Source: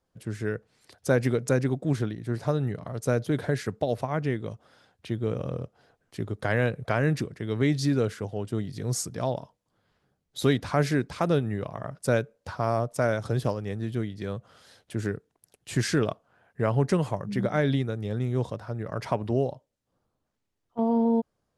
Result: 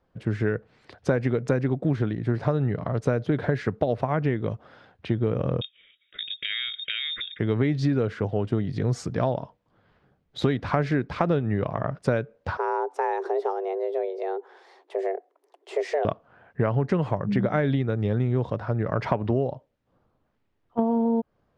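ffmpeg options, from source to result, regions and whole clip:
-filter_complex "[0:a]asettb=1/sr,asplit=3[a][b][c];[a]atrim=end=5.614[d];[b]atrim=start=5.61:end=7.39,asetpts=PTS-STARTPTS,afade=t=in:d=0.004:c=qsin,afade=t=out:st=1.776:d=0.004:c=qsin,lowpass=f=3.2k:t=q:w=0.5098,lowpass=f=3.2k:t=q:w=0.6013,lowpass=f=3.2k:t=q:w=0.9,lowpass=f=3.2k:t=q:w=2.563,afreqshift=-3800,acompressor=threshold=-30dB:ratio=6:attack=3.2:release=140:knee=1:detection=peak,asuperstop=centerf=860:order=4:qfactor=0.92[e];[c]atrim=start=7.386[f];[d][e]acrossfade=d=0.004:c1=hsin:c2=qsin[g];[g][f]acrossfade=d=0.004:c1=qsin:c2=hsin,asettb=1/sr,asplit=3[h][i][j];[h]atrim=end=12.574[k];[i]atrim=start=12.57:end=16.05,asetpts=PTS-STARTPTS,afade=t=in:d=0.004:c=qsin,afade=t=out:st=3.476:d=0.004:c=qsin,equalizer=f=2.4k:t=o:w=2.9:g=-7,acompressor=threshold=-40dB:ratio=1.5:attack=3.2:release=140:knee=1:detection=peak,afreqshift=280[l];[j]atrim=start=16.046[m];[k][l]acrossfade=d=0.004:c1=hsin:c2=qsin[n];[n][m]acrossfade=d=0.004:c1=qsin:c2=hsin,lowpass=2.7k,acompressor=threshold=-28dB:ratio=6,volume=8.5dB"

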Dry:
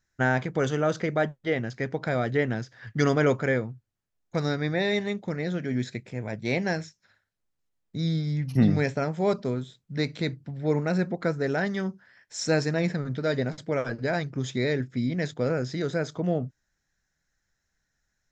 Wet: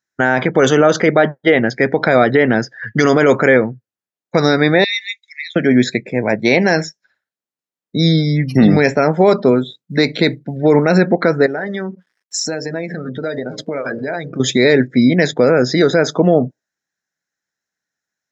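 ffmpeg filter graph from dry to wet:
-filter_complex "[0:a]asettb=1/sr,asplit=3[a][b][c];[a]atrim=end=4.844[d];[b]atrim=start=4.84:end=5.56,asetpts=PTS-STARTPTS,afade=t=in:d=0.004:c=qsin,afade=t=out:st=0.716:d=0.004:c=qsin,bandreject=f=3k:w=20,acompressor=threshold=-28dB:ratio=2.5:attack=3.2:release=140:knee=1:detection=peak,asuperpass=centerf=4900:order=12:qfactor=0.59[e];[c]atrim=start=5.556[f];[d][e]acrossfade=d=0.004:c1=hsin:c2=qsin[g];[g][f]acrossfade=d=0.004:c1=qsin:c2=hsin,asettb=1/sr,asplit=3[h][i][j];[h]atrim=end=9.514[k];[i]atrim=start=9.51:end=10.56,asetpts=PTS-STARTPTS,afade=t=in:d=0.004:c=qsin,afade=t=out:st=1.046:d=0.004:c=qsin,highpass=f=74:p=1,acrusher=bits=9:mode=log:mix=0:aa=0.000001[l];[j]atrim=start=10.556[m];[k][l]acrossfade=d=0.004:c1=hsin:c2=qsin[n];[n][m]acrossfade=d=0.004:c1=qsin:c2=hsin,asettb=1/sr,asplit=3[o][p][q];[o]atrim=end=11.464[r];[p]atrim=start=11.46:end=14.4,asetpts=PTS-STARTPTS,afade=t=in:d=0.004:c=qsin,afade=t=out:st=2.936:d=0.004:c=qsin,bandreject=f=60:t=h:w=6,bandreject=f=120:t=h:w=6,bandreject=f=180:t=h:w=6,bandreject=f=240:t=h:w=6,bandreject=f=300:t=h:w=6,bandreject=f=360:t=h:w=6,bandreject=f=420:t=h:w=6,bandreject=f=480:t=h:w=6,bandreject=f=540:t=h:w=6,bandreject=f=600:t=h:w=6,aeval=exprs='sgn(val(0))*max(abs(val(0))-0.00178,0)':c=same,acompressor=threshold=-35dB:ratio=20:attack=3.2:release=140:knee=1:detection=peak[s];[q]atrim=start=14.396[t];[r][s]acrossfade=d=0.004:c1=hsin:c2=qsin[u];[u][t]acrossfade=d=0.004:c1=qsin:c2=hsin,highpass=230,afftdn=nr=23:nf=-48,alimiter=level_in=20.5dB:limit=-1dB:release=50:level=0:latency=1,volume=-1dB"

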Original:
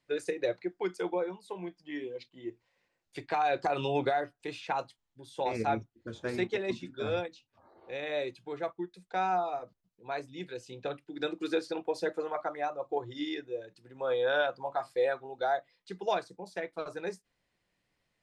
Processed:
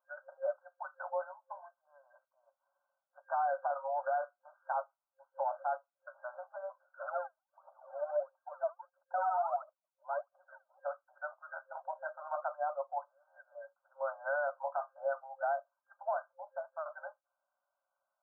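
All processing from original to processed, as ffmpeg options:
-filter_complex "[0:a]asettb=1/sr,asplit=3[a][b][c];[a]atrim=end=7.024[d];[b]atrim=start=7.02:end=10.79,asetpts=PTS-STARTPTS,afade=t=in:d=0.004:c=qsin,afade=t=out:st=3.766:d=0.004:c=qsin,lowpass=1.4k,aphaser=in_gain=1:out_gain=1:delay=3.4:decay=0.75:speed=1.5:type=triangular[e];[c]atrim=start=10.786[f];[d][e]acrossfade=d=0.004:c1=hsin:c2=qsin[g];[g][f]acrossfade=d=0.004:c1=qsin:c2=hsin,afftfilt=real='re*between(b*sr/4096,530,1600)':imag='im*between(b*sr/4096,530,1600)':win_size=4096:overlap=0.75,alimiter=level_in=1dB:limit=-24dB:level=0:latency=1:release=61,volume=-1dB"

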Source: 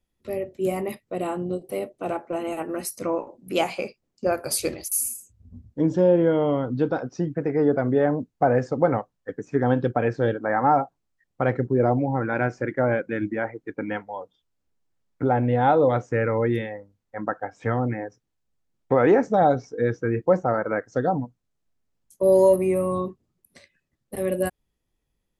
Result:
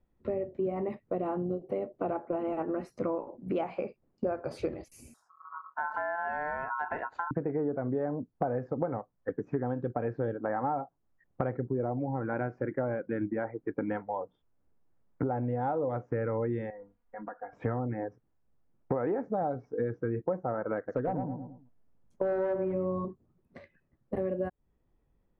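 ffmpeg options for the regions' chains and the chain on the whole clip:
-filter_complex "[0:a]asettb=1/sr,asplit=3[a][b][c];[a]atrim=end=5.144[d];[b]atrim=start=5.14:end=7.31,asetpts=PTS-STARTPTS,afade=t=in:d=0.004:c=qsin,afade=t=out:st=2.166:d=0.004:c=qsin,aeval=exprs='val(0)*sin(2*PI*1200*n/s)':c=same,acompressor=threshold=-33dB:ratio=2:attack=3.2:release=140:knee=1:detection=peak[e];[c]atrim=start=7.306[f];[d][e]acrossfade=d=0.004:c1=hsin:c2=qsin[g];[g][f]acrossfade=d=0.004:c1=qsin:c2=hsin,asettb=1/sr,asplit=3[h][i][j];[h]atrim=end=16.704[k];[i]atrim=start=16.7:end=17.53,asetpts=PTS-STARTPTS,afade=t=in:d=0.004:c=qsin,afade=t=out:st=0.826:d=0.004:c=qsin,equalizer=f=160:w=0.31:g=-11,acompressor=threshold=-51dB:ratio=2.5:attack=3.2:release=140:knee=1:detection=peak,aecho=1:1:4.2:0.89,atrim=end_sample=36603[l];[j]atrim=start=17.526[m];[k][l]acrossfade=d=0.004:c1=hsin:c2=qsin[n];[n][m]acrossfade=d=0.004:c1=qsin:c2=hsin,asettb=1/sr,asplit=3[o][p][q];[o]atrim=end=20.774[r];[p]atrim=start=20.77:end=23.05,asetpts=PTS-STARTPTS,afade=t=in:d=0.004:c=qsin,afade=t=out:st=2.276:d=0.004:c=qsin,asoftclip=type=hard:threshold=-16.5dB,asplit=2[s][t];[t]adelay=108,lowpass=f=1.2k:p=1,volume=-5.5dB,asplit=2[u][v];[v]adelay=108,lowpass=f=1.2k:p=1,volume=0.29,asplit=2[w][x];[x]adelay=108,lowpass=f=1.2k:p=1,volume=0.29,asplit=2[y][z];[z]adelay=108,lowpass=f=1.2k:p=1,volume=0.29[aa];[s][u][w][y][aa]amix=inputs=5:normalize=0,atrim=end_sample=100548[ab];[q]atrim=start=23.046[ac];[r][ab]acrossfade=d=0.004:c1=hsin:c2=qsin[ad];[ad][ac]acrossfade=d=0.004:c1=qsin:c2=hsin,lowpass=1.3k,acompressor=threshold=-35dB:ratio=6,volume=5.5dB"

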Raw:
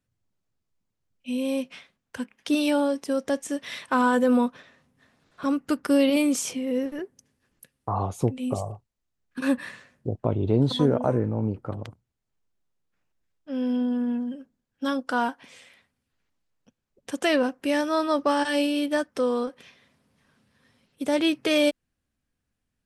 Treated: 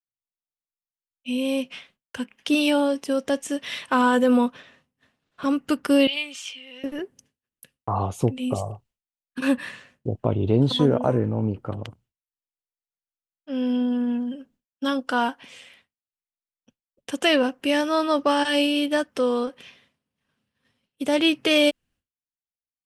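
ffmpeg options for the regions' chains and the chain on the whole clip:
-filter_complex "[0:a]asettb=1/sr,asplit=3[a][b][c];[a]atrim=end=6.074[d];[b]atrim=start=6.07:end=6.84,asetpts=PTS-STARTPTS,afade=t=in:d=0.004:c=qsin,afade=t=out:st=0.766:d=0.004:c=qsin,aeval=exprs='if(lt(val(0),0),0.708*val(0),val(0))':c=same,bandpass=f=3k:t=q:w=1.8,aecho=1:1:3.3:0.4,atrim=end_sample=33957[e];[c]atrim=start=6.836[f];[d][e]acrossfade=d=0.004:c1=hsin:c2=qsin[g];[g][f]acrossfade=d=0.004:c1=qsin:c2=hsin,agate=range=-33dB:threshold=-55dB:ratio=3:detection=peak,equalizer=f=2.9k:t=o:w=0.4:g=7,volume=2dB"

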